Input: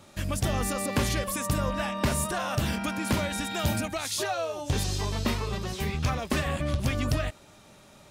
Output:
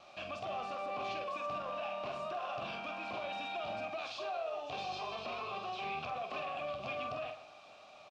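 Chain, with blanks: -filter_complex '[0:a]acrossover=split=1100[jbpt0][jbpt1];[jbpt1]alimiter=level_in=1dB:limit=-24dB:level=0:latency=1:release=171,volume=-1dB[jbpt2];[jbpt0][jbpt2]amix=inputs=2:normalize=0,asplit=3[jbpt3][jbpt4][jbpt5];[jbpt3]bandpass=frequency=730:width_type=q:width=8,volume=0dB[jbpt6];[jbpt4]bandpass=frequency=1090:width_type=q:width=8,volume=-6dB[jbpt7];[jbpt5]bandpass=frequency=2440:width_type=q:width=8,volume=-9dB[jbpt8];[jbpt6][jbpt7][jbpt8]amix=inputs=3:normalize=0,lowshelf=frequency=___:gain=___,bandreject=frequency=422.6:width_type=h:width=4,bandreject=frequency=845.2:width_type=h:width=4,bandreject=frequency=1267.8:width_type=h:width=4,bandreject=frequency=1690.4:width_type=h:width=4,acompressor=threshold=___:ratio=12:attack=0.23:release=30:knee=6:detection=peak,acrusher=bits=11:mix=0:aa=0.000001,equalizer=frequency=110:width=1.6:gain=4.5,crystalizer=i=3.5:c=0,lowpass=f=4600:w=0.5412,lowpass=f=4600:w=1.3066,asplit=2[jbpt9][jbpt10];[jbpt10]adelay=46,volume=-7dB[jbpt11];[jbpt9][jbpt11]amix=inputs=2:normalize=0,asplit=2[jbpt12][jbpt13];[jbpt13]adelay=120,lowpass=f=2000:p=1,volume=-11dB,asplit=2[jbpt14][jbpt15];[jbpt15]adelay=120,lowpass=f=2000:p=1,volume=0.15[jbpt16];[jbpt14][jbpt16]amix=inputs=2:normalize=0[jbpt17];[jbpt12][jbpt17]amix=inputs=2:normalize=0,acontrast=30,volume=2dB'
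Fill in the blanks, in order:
80, -11, -44dB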